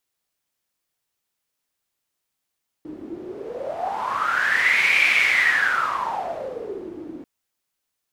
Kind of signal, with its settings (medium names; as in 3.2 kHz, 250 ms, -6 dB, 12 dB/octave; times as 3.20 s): wind-like swept noise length 4.39 s, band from 310 Hz, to 2.3 kHz, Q 11, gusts 1, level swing 18 dB